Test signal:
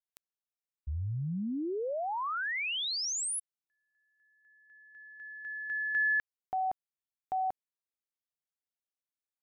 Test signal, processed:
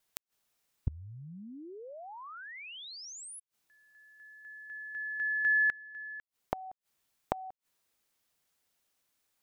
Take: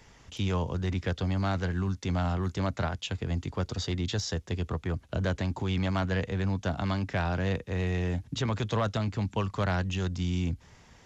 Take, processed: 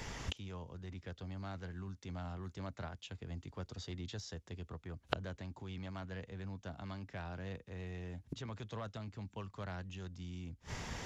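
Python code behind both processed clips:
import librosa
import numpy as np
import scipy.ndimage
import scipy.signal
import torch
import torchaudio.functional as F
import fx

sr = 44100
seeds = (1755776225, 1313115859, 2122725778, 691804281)

y = fx.gate_flip(x, sr, shuts_db=-35.0, range_db=-29)
y = fx.rider(y, sr, range_db=4, speed_s=2.0)
y = y * librosa.db_to_amplitude(13.0)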